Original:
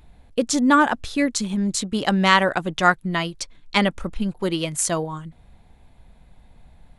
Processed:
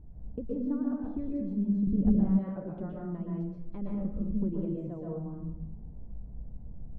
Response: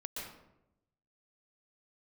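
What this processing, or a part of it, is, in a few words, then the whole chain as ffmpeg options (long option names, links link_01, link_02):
television next door: -filter_complex "[0:a]acompressor=threshold=-34dB:ratio=5,lowpass=340[link_01];[1:a]atrim=start_sample=2205[link_02];[link_01][link_02]afir=irnorm=-1:irlink=0,asettb=1/sr,asplit=3[link_03][link_04][link_05];[link_03]atrim=end=1.874[link_06];[link_04]atrim=start=1.87:end=2.39,asetpts=PTS-STARTPTS,afade=type=in:duration=0.004:curve=qsin,afade=type=out:start_time=0.516:duration=0.004:curve=qsin,aemphasis=mode=reproduction:type=bsi[link_07];[link_05]atrim=start=2.386[link_08];[link_06][link_07]acrossfade=duration=0.004:curve1=hsin:curve2=qsin[link_09];[link_09][link_08]acrossfade=duration=0.004:curve1=qsin:curve2=hsin,volume=6dB"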